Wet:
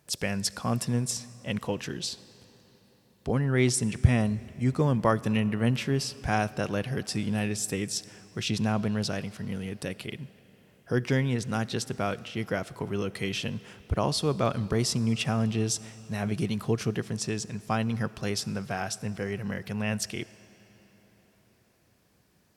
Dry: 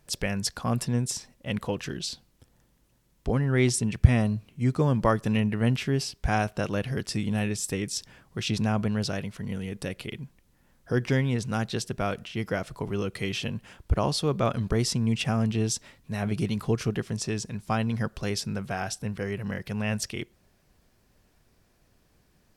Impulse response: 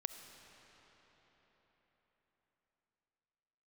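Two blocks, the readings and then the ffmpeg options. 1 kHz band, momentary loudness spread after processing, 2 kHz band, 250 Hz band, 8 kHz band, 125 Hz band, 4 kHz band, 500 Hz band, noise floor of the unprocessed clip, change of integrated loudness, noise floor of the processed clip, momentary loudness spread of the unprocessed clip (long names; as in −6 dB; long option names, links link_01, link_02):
−0.5 dB, 9 LU, −0.5 dB, −1.0 dB, +0.5 dB, −2.0 dB, 0.0 dB, −0.5 dB, −66 dBFS, −1.0 dB, −65 dBFS, 10 LU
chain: -filter_complex "[0:a]highpass=83,asplit=2[link_01][link_02];[1:a]atrim=start_sample=2205,highshelf=frequency=5000:gain=6.5[link_03];[link_02][link_03]afir=irnorm=-1:irlink=0,volume=-8dB[link_04];[link_01][link_04]amix=inputs=2:normalize=0,volume=-3dB"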